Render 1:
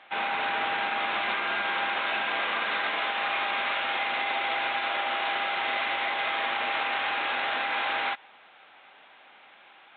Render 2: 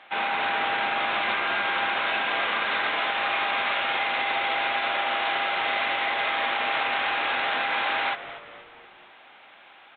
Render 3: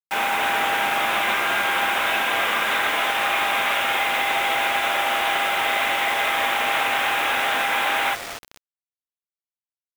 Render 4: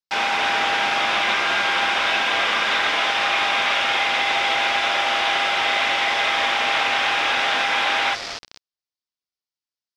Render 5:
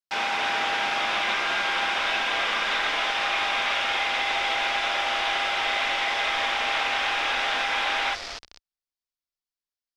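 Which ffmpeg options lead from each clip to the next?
-filter_complex "[0:a]asplit=5[a][b][c][d][e];[b]adelay=239,afreqshift=-110,volume=-14dB[f];[c]adelay=478,afreqshift=-220,volume=-20.6dB[g];[d]adelay=717,afreqshift=-330,volume=-27.1dB[h];[e]adelay=956,afreqshift=-440,volume=-33.7dB[i];[a][f][g][h][i]amix=inputs=5:normalize=0,volume=2.5dB"
-af "acrusher=bits=5:mix=0:aa=0.000001,volume=4dB"
-af "lowpass=f=5k:t=q:w=3.1"
-af "asubboost=boost=5.5:cutoff=52,volume=-5dB"

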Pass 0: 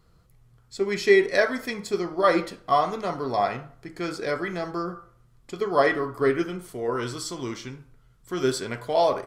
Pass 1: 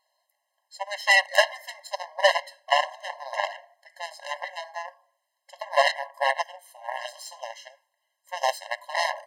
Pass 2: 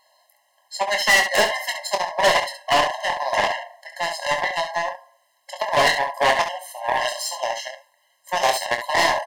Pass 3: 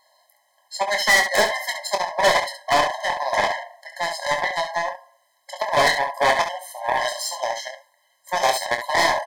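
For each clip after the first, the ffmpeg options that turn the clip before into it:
-af "asubboost=boost=3.5:cutoff=250,aeval=exprs='0.473*(cos(1*acos(clip(val(0)/0.473,-1,1)))-cos(1*PI/2))+0.0596*(cos(4*acos(clip(val(0)/0.473,-1,1)))-cos(4*PI/2))+0.106*(cos(7*acos(clip(val(0)/0.473,-1,1)))-cos(7*PI/2))':c=same,afftfilt=real='re*eq(mod(floor(b*sr/1024/540),2),1)':imag='im*eq(mod(floor(b*sr/1024/540),2),1)':win_size=1024:overlap=0.75,volume=4.5dB"
-filter_complex "[0:a]asplit=2[a][b];[b]alimiter=limit=-15dB:level=0:latency=1:release=161,volume=2dB[c];[a][c]amix=inputs=2:normalize=0,asoftclip=type=tanh:threshold=-18dB,aecho=1:1:24|68:0.422|0.355,volume=5.5dB"
-af "asuperstop=centerf=2800:order=20:qfactor=8"

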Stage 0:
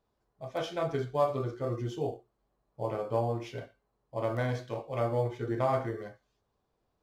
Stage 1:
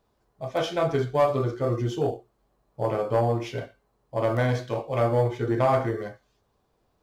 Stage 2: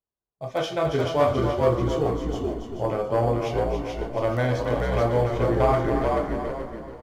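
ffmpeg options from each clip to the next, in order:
-af "asoftclip=type=tanh:threshold=-20dB,volume=8dB"
-filter_complex "[0:a]asplit=2[a][b];[b]asplit=4[c][d][e][f];[c]adelay=433,afreqshift=-62,volume=-3dB[g];[d]adelay=866,afreqshift=-124,volume=-13.2dB[h];[e]adelay=1299,afreqshift=-186,volume=-23.3dB[i];[f]adelay=1732,afreqshift=-248,volume=-33.5dB[j];[g][h][i][j]amix=inputs=4:normalize=0[k];[a][k]amix=inputs=2:normalize=0,agate=range=-26dB:threshold=-50dB:ratio=16:detection=peak,asplit=2[l][m];[m]aecho=0:1:280|560|840|1120:0.398|0.131|0.0434|0.0143[n];[l][n]amix=inputs=2:normalize=0"

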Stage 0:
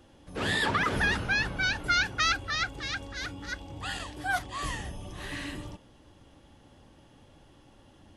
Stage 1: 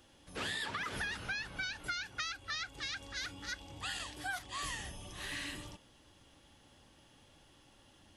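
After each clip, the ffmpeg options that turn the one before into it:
-af "tiltshelf=f=1.4k:g=-5.5,acompressor=threshold=-32dB:ratio=8,volume=-3.5dB"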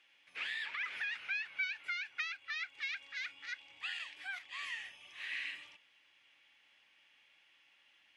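-af "bandpass=f=2.3k:t=q:w=4.5:csg=0,volume=8dB"

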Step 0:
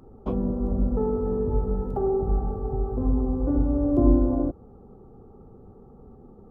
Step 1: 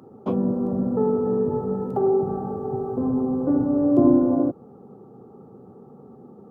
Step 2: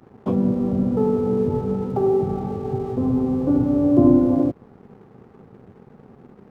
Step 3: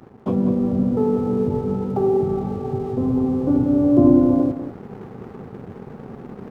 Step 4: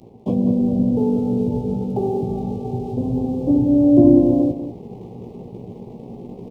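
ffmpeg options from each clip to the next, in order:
-af "highpass=f=130:w=0.5412,highpass=f=130:w=1.3066,volume=4.5dB"
-af "equalizer=f=62:w=0.51:g=11.5,aeval=exprs='sgn(val(0))*max(abs(val(0))-0.00398,0)':c=same"
-af "areverse,acompressor=mode=upward:threshold=-24dB:ratio=2.5,areverse,aecho=1:1:197:0.282"
-filter_complex "[0:a]asuperstop=centerf=1500:order=4:qfactor=0.76,asplit=2[a][b];[b]adelay=17,volume=-5.5dB[c];[a][c]amix=inputs=2:normalize=0"

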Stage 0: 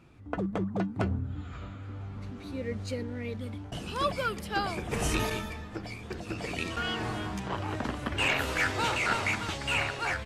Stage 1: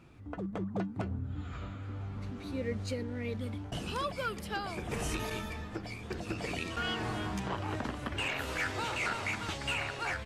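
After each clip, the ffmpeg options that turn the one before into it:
-af "alimiter=level_in=0.5dB:limit=-24dB:level=0:latency=1:release=447,volume=-0.5dB"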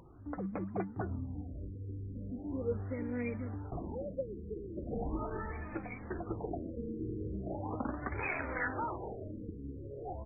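-af "acompressor=mode=upward:threshold=-51dB:ratio=2.5,flanger=delay=2.1:depth=2.1:regen=33:speed=1.1:shape=triangular,afftfilt=real='re*lt(b*sr/1024,490*pow(2600/490,0.5+0.5*sin(2*PI*0.39*pts/sr)))':imag='im*lt(b*sr/1024,490*pow(2600/490,0.5+0.5*sin(2*PI*0.39*pts/sr)))':win_size=1024:overlap=0.75,volume=3.5dB"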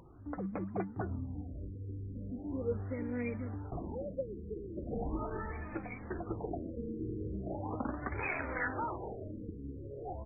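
-af anull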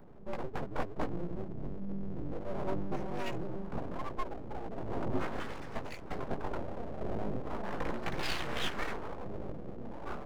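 -filter_complex "[0:a]acrossover=split=210|280|1000[a][b][c][d];[d]aeval=exprs='sgn(val(0))*max(abs(val(0))-0.00211,0)':c=same[e];[a][b][c][e]amix=inputs=4:normalize=0,flanger=delay=17:depth=4.2:speed=0.24,aeval=exprs='abs(val(0))':c=same,volume=8dB"

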